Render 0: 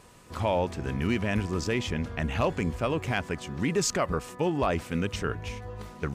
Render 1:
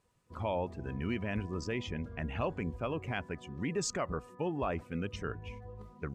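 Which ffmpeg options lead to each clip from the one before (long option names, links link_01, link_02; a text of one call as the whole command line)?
ffmpeg -i in.wav -af "afftdn=noise_reduction=15:noise_floor=-40,volume=-7.5dB" out.wav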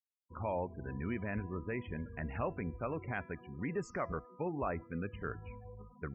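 ffmpeg -i in.wav -af "highshelf=frequency=2700:width_type=q:width=1.5:gain=-12.5,afftfilt=real='re*gte(hypot(re,im),0.00562)':imag='im*gte(hypot(re,im),0.00562)':win_size=1024:overlap=0.75,bandreject=frequency=334.9:width_type=h:width=4,bandreject=frequency=669.8:width_type=h:width=4,bandreject=frequency=1004.7:width_type=h:width=4,bandreject=frequency=1339.6:width_type=h:width=4,bandreject=frequency=1674.5:width_type=h:width=4,bandreject=frequency=2009.4:width_type=h:width=4,bandreject=frequency=2344.3:width_type=h:width=4,bandreject=frequency=2679.2:width_type=h:width=4,bandreject=frequency=3014.1:width_type=h:width=4,bandreject=frequency=3349:width_type=h:width=4,bandreject=frequency=3683.9:width_type=h:width=4,bandreject=frequency=4018.8:width_type=h:width=4,bandreject=frequency=4353.7:width_type=h:width=4,bandreject=frequency=4688.6:width_type=h:width=4,bandreject=frequency=5023.5:width_type=h:width=4,bandreject=frequency=5358.4:width_type=h:width=4,bandreject=frequency=5693.3:width_type=h:width=4,bandreject=frequency=6028.2:width_type=h:width=4,volume=-3dB" out.wav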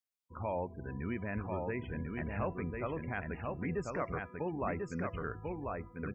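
ffmpeg -i in.wav -af "aecho=1:1:1043:0.668" out.wav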